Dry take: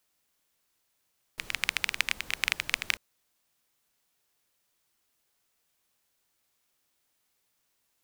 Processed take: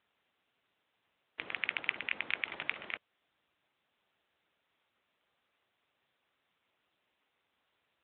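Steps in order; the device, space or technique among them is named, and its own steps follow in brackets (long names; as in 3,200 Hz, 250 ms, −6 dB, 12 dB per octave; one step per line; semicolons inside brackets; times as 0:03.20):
telephone (band-pass filter 260–3,400 Hz; soft clipping −8 dBFS, distortion −19 dB; level +5.5 dB; AMR narrowband 10.2 kbit/s 8,000 Hz)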